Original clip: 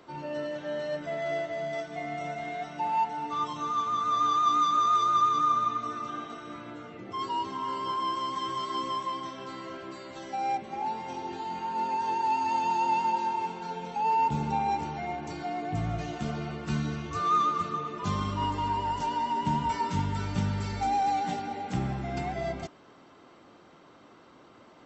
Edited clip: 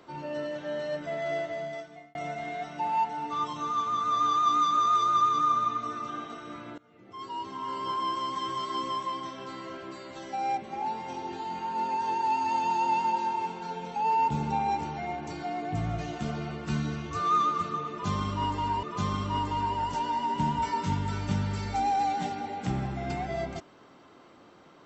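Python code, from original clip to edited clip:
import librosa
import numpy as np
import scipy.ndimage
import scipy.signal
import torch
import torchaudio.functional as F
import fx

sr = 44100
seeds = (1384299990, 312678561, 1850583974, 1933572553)

y = fx.edit(x, sr, fx.fade_out_span(start_s=1.5, length_s=0.65),
    fx.fade_in_from(start_s=6.78, length_s=1.13, floor_db=-22.5),
    fx.repeat(start_s=17.9, length_s=0.93, count=2), tone=tone)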